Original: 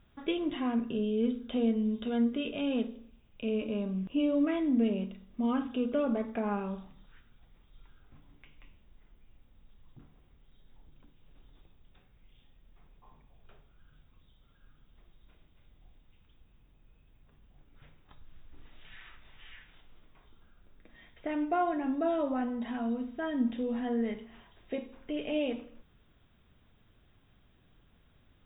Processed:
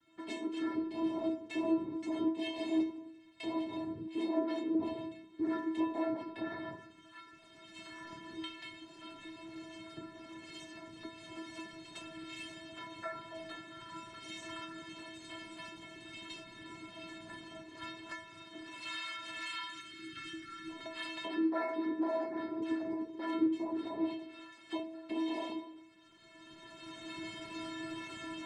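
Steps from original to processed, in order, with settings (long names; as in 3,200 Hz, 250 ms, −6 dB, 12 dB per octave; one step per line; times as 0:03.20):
camcorder AGC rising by 17 dB per second
cochlear-implant simulation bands 6
gain on a spectral selection 0:19.71–0:20.69, 400–1,100 Hz −22 dB
in parallel at +2 dB: downward compressor, threshold −41 dBFS, peak gain reduction 18.5 dB
on the sum: stiff-string resonator 320 Hz, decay 0.5 s, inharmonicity 0.008
level +10 dB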